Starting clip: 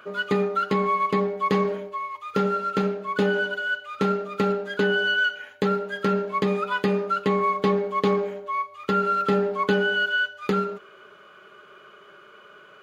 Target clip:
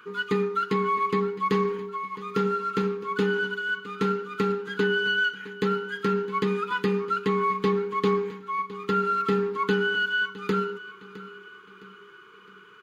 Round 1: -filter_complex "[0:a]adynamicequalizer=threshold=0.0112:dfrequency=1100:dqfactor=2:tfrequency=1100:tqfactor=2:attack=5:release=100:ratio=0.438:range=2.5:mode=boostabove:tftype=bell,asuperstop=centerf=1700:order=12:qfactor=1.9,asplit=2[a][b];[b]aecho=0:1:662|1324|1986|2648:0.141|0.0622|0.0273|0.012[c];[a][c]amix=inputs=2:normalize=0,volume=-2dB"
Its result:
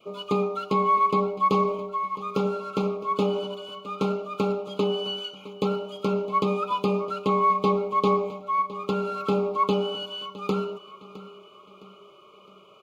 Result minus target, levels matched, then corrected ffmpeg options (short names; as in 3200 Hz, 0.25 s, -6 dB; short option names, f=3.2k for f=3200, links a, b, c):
2000 Hz band -15.0 dB; 1000 Hz band +2.5 dB
-filter_complex "[0:a]asuperstop=centerf=650:order=12:qfactor=1.9,asplit=2[a][b];[b]aecho=0:1:662|1324|1986|2648:0.141|0.0622|0.0273|0.012[c];[a][c]amix=inputs=2:normalize=0,volume=-2dB"